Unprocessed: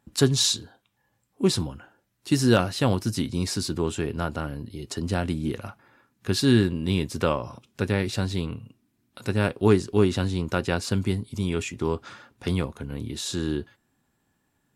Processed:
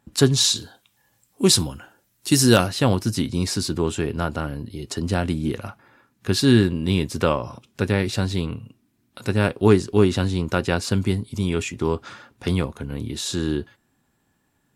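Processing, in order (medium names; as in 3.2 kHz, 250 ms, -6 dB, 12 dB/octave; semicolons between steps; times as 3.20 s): 0.55–2.66 s: treble shelf 2.7 kHz -> 5.4 kHz +12 dB; trim +3.5 dB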